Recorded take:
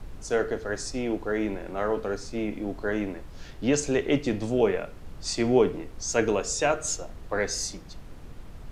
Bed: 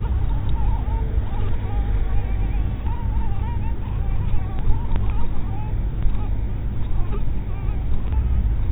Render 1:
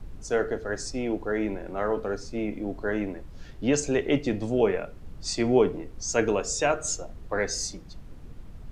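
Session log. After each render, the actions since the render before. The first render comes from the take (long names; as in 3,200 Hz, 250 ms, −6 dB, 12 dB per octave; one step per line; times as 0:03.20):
broadband denoise 6 dB, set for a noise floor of −44 dBFS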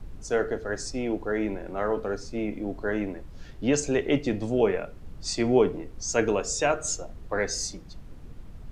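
no processing that can be heard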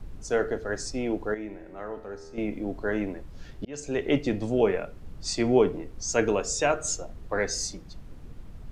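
0:01.34–0:02.38: tuned comb filter 80 Hz, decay 2 s, mix 70%
0:03.65–0:04.11: fade in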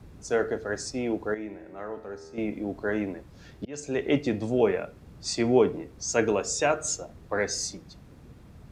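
high-pass filter 73 Hz 12 dB per octave
notch filter 3,000 Hz, Q 22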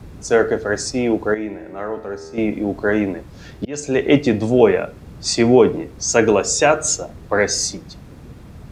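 level +10.5 dB
brickwall limiter −1 dBFS, peak gain reduction 2.5 dB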